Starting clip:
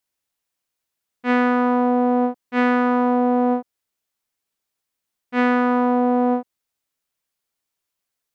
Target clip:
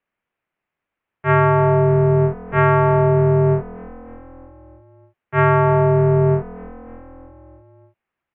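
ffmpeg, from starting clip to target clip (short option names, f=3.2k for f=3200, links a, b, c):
-filter_complex "[0:a]asplit=6[a][b][c][d][e][f];[b]adelay=302,afreqshift=42,volume=-22.5dB[g];[c]adelay=604,afreqshift=84,volume=-26.2dB[h];[d]adelay=906,afreqshift=126,volume=-30dB[i];[e]adelay=1208,afreqshift=168,volume=-33.7dB[j];[f]adelay=1510,afreqshift=210,volume=-37.5dB[k];[a][g][h][i][j][k]amix=inputs=6:normalize=0,highpass=f=370:t=q:w=0.5412,highpass=f=370:t=q:w=1.307,lowpass=f=2.9k:t=q:w=0.5176,lowpass=f=2.9k:t=q:w=0.7071,lowpass=f=2.9k:t=q:w=1.932,afreqshift=-350,volume=7dB"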